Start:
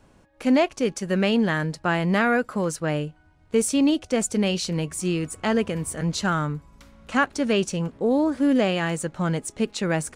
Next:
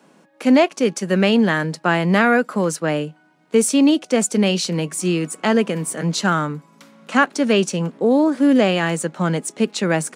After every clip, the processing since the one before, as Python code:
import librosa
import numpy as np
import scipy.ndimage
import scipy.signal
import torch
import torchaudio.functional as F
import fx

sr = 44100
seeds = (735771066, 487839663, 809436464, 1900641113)

y = scipy.signal.sosfilt(scipy.signal.butter(8, 160.0, 'highpass', fs=sr, output='sos'), x)
y = F.gain(torch.from_numpy(y), 5.5).numpy()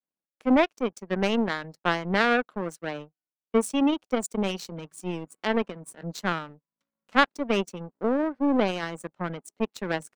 y = fx.spec_gate(x, sr, threshold_db=-25, keep='strong')
y = fx.power_curve(y, sr, exponent=2.0)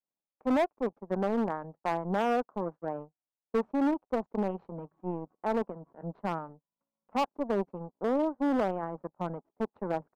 y = fx.ladder_lowpass(x, sr, hz=1100.0, resonance_pct=40)
y = np.clip(y, -10.0 ** (-26.0 / 20.0), 10.0 ** (-26.0 / 20.0))
y = F.gain(torch.from_numpy(y), 4.5).numpy()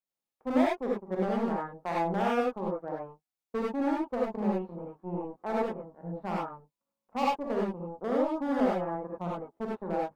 y = fx.rev_gated(x, sr, seeds[0], gate_ms=120, shape='rising', drr_db=-4.5)
y = F.gain(torch.from_numpy(y), -4.5).numpy()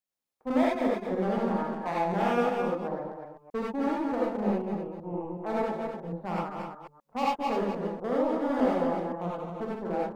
y = fx.reverse_delay(x, sr, ms=125, wet_db=-5.5)
y = y + 10.0 ** (-7.0 / 20.0) * np.pad(y, (int(252 * sr / 1000.0), 0))[:len(y)]